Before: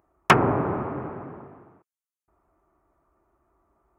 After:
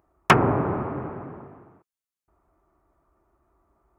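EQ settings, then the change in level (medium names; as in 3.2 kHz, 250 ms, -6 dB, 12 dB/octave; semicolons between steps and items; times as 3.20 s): bass shelf 130 Hz +4 dB; 0.0 dB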